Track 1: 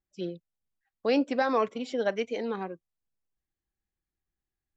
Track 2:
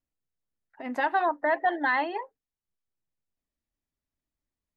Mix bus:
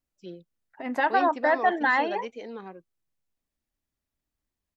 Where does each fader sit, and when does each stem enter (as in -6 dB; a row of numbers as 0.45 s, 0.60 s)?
-7.0 dB, +2.5 dB; 0.05 s, 0.00 s